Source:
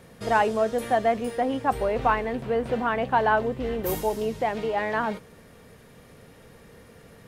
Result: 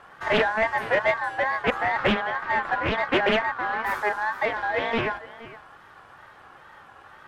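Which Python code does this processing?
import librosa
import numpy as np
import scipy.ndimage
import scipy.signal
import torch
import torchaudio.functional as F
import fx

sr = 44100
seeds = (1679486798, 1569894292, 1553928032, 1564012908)

p1 = x * np.sin(2.0 * np.pi * 1300.0 * np.arange(len(x)) / sr)
p2 = fx.lowpass(p1, sr, hz=1700.0, slope=6)
p3 = 10.0 ** (-27.5 / 20.0) * np.tanh(p2 / 10.0 ** (-27.5 / 20.0))
p4 = p2 + F.gain(torch.from_numpy(p3), -7.0).numpy()
p5 = p4 + 10.0 ** (-17.5 / 20.0) * np.pad(p4, (int(465 * sr / 1000.0), 0))[:len(p4)]
p6 = fx.wow_flutter(p5, sr, seeds[0], rate_hz=2.1, depth_cents=110.0)
p7 = fx.doppler_dist(p6, sr, depth_ms=0.52)
y = F.gain(torch.from_numpy(p7), 3.0).numpy()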